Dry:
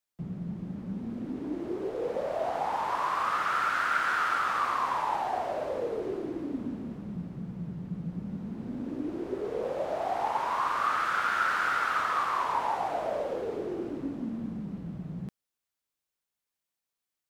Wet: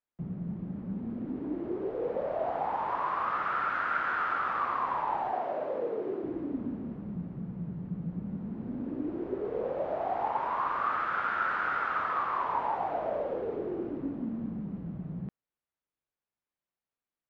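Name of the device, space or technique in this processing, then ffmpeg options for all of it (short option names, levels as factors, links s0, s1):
phone in a pocket: -filter_complex "[0:a]asettb=1/sr,asplit=3[s0][s1][s2];[s0]atrim=end=5.324[s3];[s1]atrim=start=5.32:end=6.24,asetpts=PTS-STARTPTS,afade=t=in:d=0.004:c=qsin,afade=t=out:st=0.916:d=0.004:c=qsin,highpass=180[s4];[s2]atrim=start=6.236[s5];[s3][s4]acrossfade=d=0.004:c1=hsin:c2=qsin[s6];[s6][s5]acrossfade=d=0.004:c1=qsin:c2=hsin,lowpass=3200,highshelf=f=2400:g=-10"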